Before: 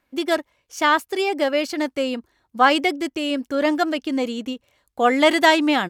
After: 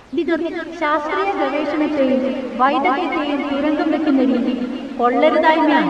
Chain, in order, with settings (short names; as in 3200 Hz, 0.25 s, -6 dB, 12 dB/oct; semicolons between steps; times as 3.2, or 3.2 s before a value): notch 680 Hz, Q 20; in parallel at -1 dB: compressor, threshold -27 dBFS, peak gain reduction 16 dB; on the sum: requantised 6-bit, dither triangular; phaser 0.49 Hz, delay 1.7 ms, feedback 43%; tape spacing loss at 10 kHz 33 dB; on a send: split-band echo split 990 Hz, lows 0.128 s, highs 0.273 s, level -3.5 dB; on the sum: warbling echo 0.218 s, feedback 73%, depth 211 cents, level -13.5 dB; gain +1 dB